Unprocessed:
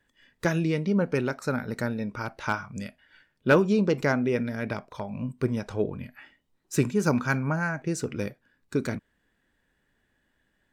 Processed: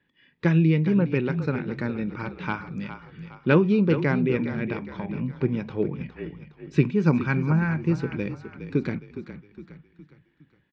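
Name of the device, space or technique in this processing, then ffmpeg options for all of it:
frequency-shifting delay pedal into a guitar cabinet: -filter_complex "[0:a]lowshelf=f=110:g=5,asplit=6[a][b][c][d][e][f];[b]adelay=412,afreqshift=-33,volume=-11dB[g];[c]adelay=824,afreqshift=-66,volume=-17.9dB[h];[d]adelay=1236,afreqshift=-99,volume=-24.9dB[i];[e]adelay=1648,afreqshift=-132,volume=-31.8dB[j];[f]adelay=2060,afreqshift=-165,volume=-38.7dB[k];[a][g][h][i][j][k]amix=inputs=6:normalize=0,highpass=82,equalizer=f=90:t=q:w=4:g=-8,equalizer=f=160:t=q:w=4:g=8,equalizer=f=330:t=q:w=4:g=4,equalizer=f=650:t=q:w=4:g=-8,equalizer=f=1.4k:t=q:w=4:g=-4,equalizer=f=2.4k:t=q:w=4:g=4,lowpass=f=3.9k:w=0.5412,lowpass=f=3.9k:w=1.3066"

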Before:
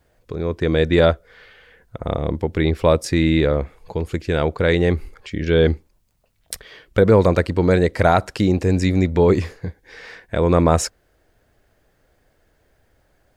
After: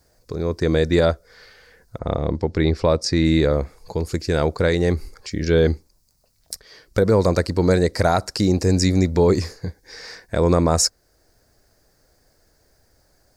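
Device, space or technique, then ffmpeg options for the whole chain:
over-bright horn tweeter: -filter_complex "[0:a]highshelf=f=3.9k:t=q:w=3:g=7,alimiter=limit=-7dB:level=0:latency=1:release=436,asettb=1/sr,asplit=3[a][b][c];[a]atrim=end=1.994[d];[b]atrim=start=1.99:end=3.25,asetpts=PTS-STARTPTS,afade=t=in:d=0.004:c=qsin,afade=t=out:st=1.256:d=0.004:c=qsin,lowpass=5.1k[e];[c]atrim=start=3.246[f];[d][e]acrossfade=d=0.004:c1=hsin:c2=qsin[g];[g][f]acrossfade=d=0.004:c1=qsin:c2=hsin"

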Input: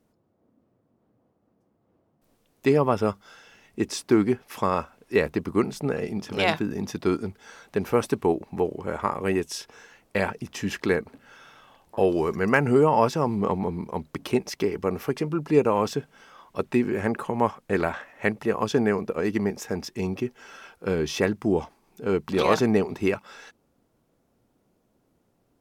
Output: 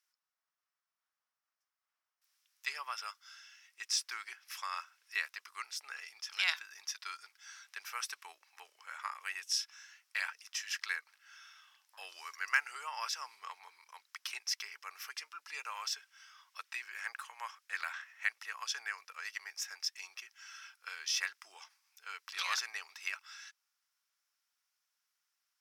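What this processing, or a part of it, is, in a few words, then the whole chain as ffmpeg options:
headphones lying on a table: -af "highpass=f=1.4k:w=0.5412,highpass=f=1.4k:w=1.3066,equalizer=f=5.4k:t=o:w=0.38:g=9,volume=-5dB"

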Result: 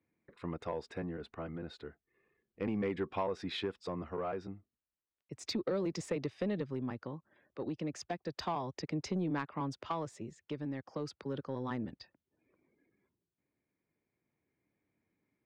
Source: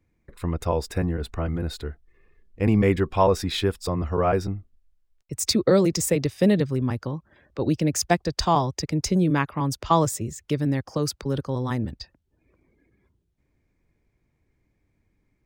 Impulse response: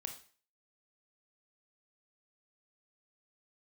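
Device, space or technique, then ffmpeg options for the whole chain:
AM radio: -af "highpass=180,lowpass=3.4k,acompressor=threshold=-22dB:ratio=6,asoftclip=type=tanh:threshold=-17dB,tremolo=f=0.33:d=0.35,volume=-7dB"

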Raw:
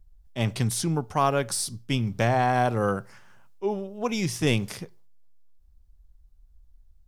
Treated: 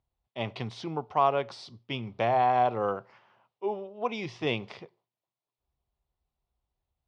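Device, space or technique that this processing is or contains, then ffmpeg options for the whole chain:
kitchen radio: -af "highpass=180,equalizer=f=180:t=q:w=4:g=-10,equalizer=f=270:t=q:w=4:g=-6,equalizer=f=710:t=q:w=4:g=4,equalizer=f=1k:t=q:w=4:g=4,equalizer=f=1.6k:t=q:w=4:g=-8,lowpass=f=3.8k:w=0.5412,lowpass=f=3.8k:w=1.3066,volume=-3dB"

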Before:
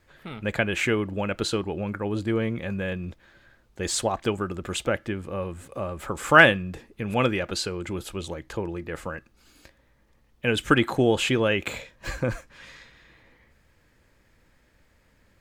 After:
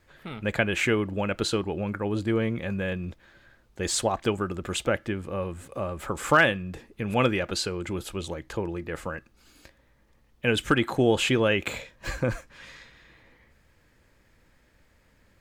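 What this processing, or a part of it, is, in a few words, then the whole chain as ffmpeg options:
limiter into clipper: -af "alimiter=limit=-8dB:level=0:latency=1:release=451,asoftclip=type=hard:threshold=-9.5dB"

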